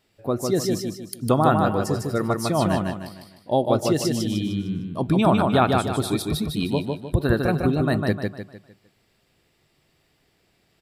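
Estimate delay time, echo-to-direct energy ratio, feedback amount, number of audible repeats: 152 ms, −3.0 dB, 39%, 4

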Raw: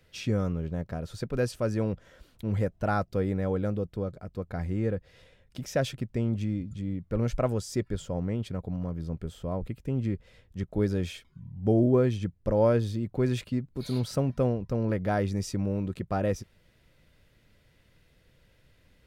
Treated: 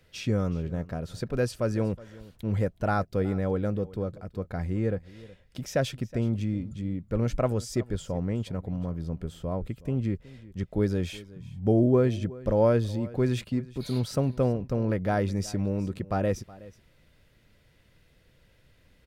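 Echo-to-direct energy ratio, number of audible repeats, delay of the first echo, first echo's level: −20.0 dB, 1, 370 ms, −20.0 dB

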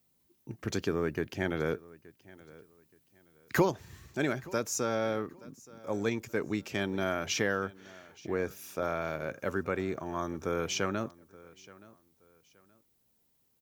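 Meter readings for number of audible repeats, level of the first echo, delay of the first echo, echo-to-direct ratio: 2, −21.5 dB, 874 ms, −21.0 dB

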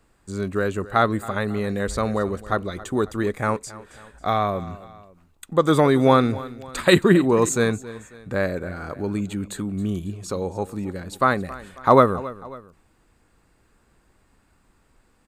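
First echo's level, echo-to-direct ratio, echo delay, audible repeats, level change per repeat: −18.0 dB, −17.0 dB, 272 ms, 2, −6.0 dB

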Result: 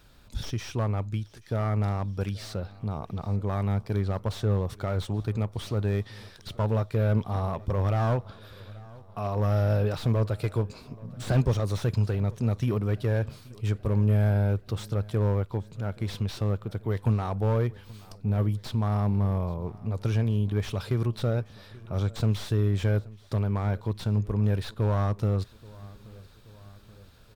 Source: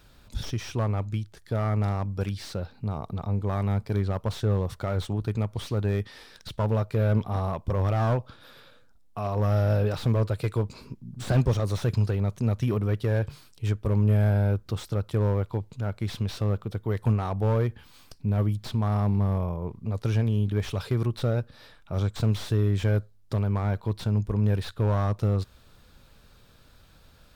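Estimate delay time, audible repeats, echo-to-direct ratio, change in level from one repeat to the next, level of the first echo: 829 ms, 3, −20.5 dB, −4.5 dB, −22.0 dB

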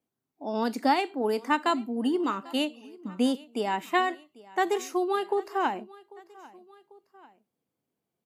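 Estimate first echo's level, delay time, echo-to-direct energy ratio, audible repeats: −22.0 dB, 794 ms, −20.5 dB, 2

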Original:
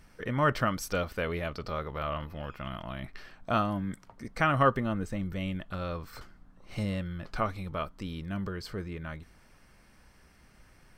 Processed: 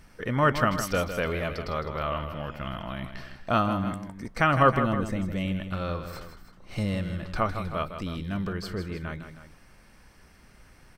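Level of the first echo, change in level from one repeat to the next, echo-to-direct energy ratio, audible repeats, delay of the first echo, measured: −9.5 dB, −4.5 dB, −8.0 dB, 2, 158 ms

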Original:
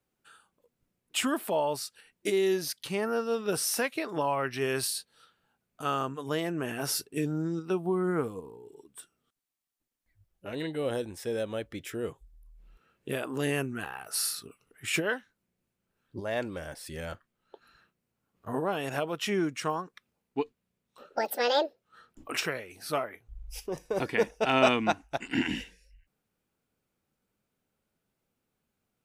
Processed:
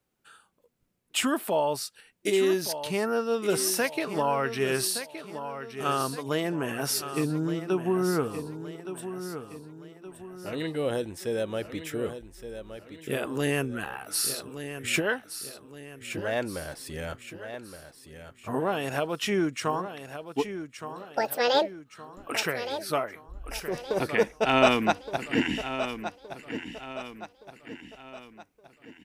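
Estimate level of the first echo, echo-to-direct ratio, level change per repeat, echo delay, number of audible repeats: −10.5 dB, −9.5 dB, −7.0 dB, 1,169 ms, 4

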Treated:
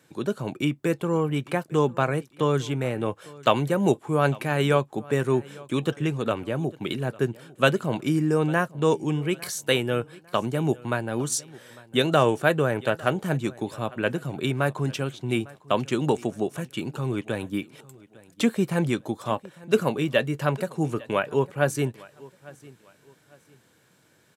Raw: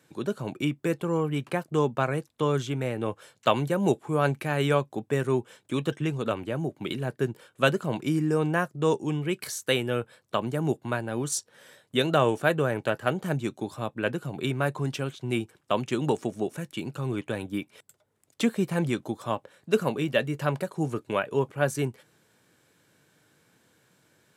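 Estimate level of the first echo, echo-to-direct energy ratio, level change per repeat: −22.0 dB, −21.5 dB, −10.0 dB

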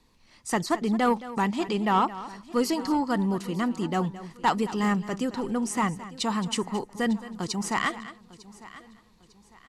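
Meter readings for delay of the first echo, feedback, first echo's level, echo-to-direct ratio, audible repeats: 219 ms, repeats not evenly spaced, −15.5 dB, −13.5 dB, 4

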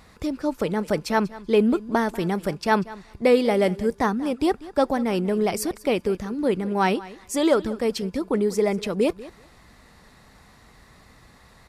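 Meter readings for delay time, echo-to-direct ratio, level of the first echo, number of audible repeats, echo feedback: 191 ms, −18.5 dB, −18.5 dB, 2, 15%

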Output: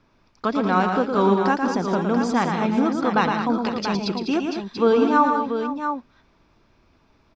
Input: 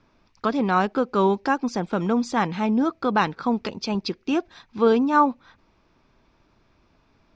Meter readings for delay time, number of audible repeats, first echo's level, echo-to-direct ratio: 113 ms, 5, −5.5 dB, −2.0 dB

